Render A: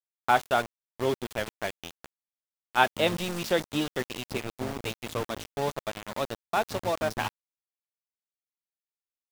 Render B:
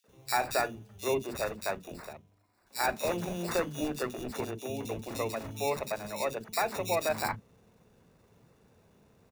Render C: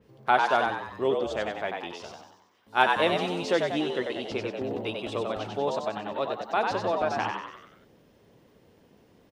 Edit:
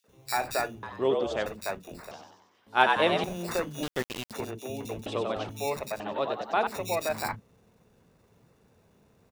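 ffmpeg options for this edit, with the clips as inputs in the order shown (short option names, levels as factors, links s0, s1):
-filter_complex "[2:a]asplit=4[s0][s1][s2][s3];[1:a]asplit=6[s4][s5][s6][s7][s8][s9];[s4]atrim=end=0.832[s10];[s0]atrim=start=0.828:end=1.462[s11];[s5]atrim=start=1.458:end=2.112[s12];[s1]atrim=start=2.108:end=3.242[s13];[s6]atrim=start=3.238:end=3.832[s14];[0:a]atrim=start=3.828:end=4.312[s15];[s7]atrim=start=4.308:end=5.062[s16];[s2]atrim=start=5.058:end=5.492[s17];[s8]atrim=start=5.488:end=6.002[s18];[s3]atrim=start=5.998:end=6.672[s19];[s9]atrim=start=6.668[s20];[s10][s11]acrossfade=d=0.004:c1=hsin:c2=hsin[s21];[s21][s12]acrossfade=d=0.004:c1=hsin:c2=hsin[s22];[s22][s13]acrossfade=d=0.004:c1=hsin:c2=hsin[s23];[s23][s14]acrossfade=d=0.004:c1=hsin:c2=hsin[s24];[s24][s15]acrossfade=d=0.004:c1=hsin:c2=hsin[s25];[s25][s16]acrossfade=d=0.004:c1=hsin:c2=hsin[s26];[s26][s17]acrossfade=d=0.004:c1=hsin:c2=hsin[s27];[s27][s18]acrossfade=d=0.004:c1=hsin:c2=hsin[s28];[s28][s19]acrossfade=d=0.004:c1=hsin:c2=hsin[s29];[s29][s20]acrossfade=d=0.004:c1=hsin:c2=hsin"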